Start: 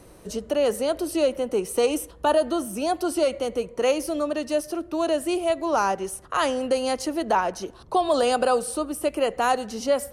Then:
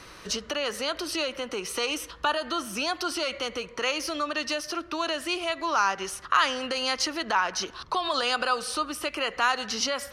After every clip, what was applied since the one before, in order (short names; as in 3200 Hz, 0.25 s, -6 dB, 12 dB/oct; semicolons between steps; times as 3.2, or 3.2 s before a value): in parallel at -0.5 dB: limiter -22 dBFS, peak gain reduction 10 dB; on the sum: compressor 2:1, threshold -25 dBFS, peak gain reduction 6.5 dB; band shelf 2500 Hz +15.5 dB 2.9 oct; gain -8.5 dB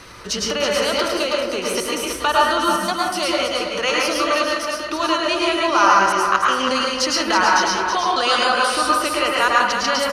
step gate "x.xxxxxxx.x.xx" 125 bpm; feedback echo 0.324 s, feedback 28%, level -7 dB; plate-style reverb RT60 0.59 s, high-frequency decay 0.45×, pre-delay 95 ms, DRR -3 dB; gain +5.5 dB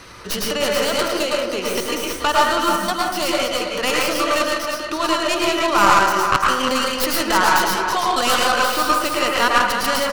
tracing distortion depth 0.17 ms